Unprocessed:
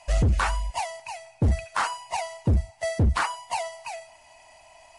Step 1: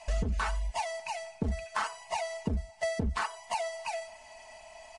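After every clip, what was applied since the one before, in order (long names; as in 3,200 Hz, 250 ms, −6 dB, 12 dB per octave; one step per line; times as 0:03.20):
low-pass filter 9,000 Hz 12 dB per octave
comb filter 4.6 ms, depth 67%
downward compressor 2.5 to 1, threshold −32 dBFS, peak gain reduction 11 dB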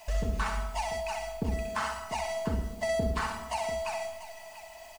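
bit-depth reduction 10 bits, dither triangular
on a send: multi-tap delay 64/114/692 ms −5.5/−10.5/−13.5 dB
on the sum: comb and all-pass reverb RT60 0.86 s, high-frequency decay 0.25×, pre-delay 85 ms, DRR 11 dB
level −1 dB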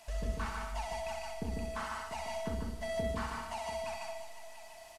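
linear delta modulator 64 kbit/s, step −44.5 dBFS
tuned comb filter 230 Hz, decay 1.1 s, mix 60%
single-tap delay 149 ms −3.5 dB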